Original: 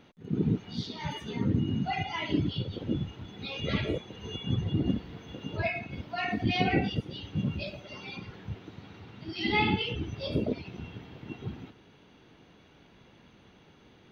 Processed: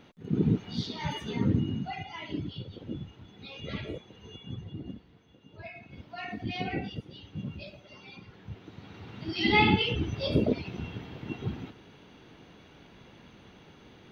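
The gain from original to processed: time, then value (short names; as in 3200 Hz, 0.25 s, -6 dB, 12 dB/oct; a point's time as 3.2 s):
1.49 s +2 dB
1.99 s -7 dB
4.13 s -7 dB
5.45 s -17.5 dB
6.01 s -7 dB
8.26 s -7 dB
9.16 s +4 dB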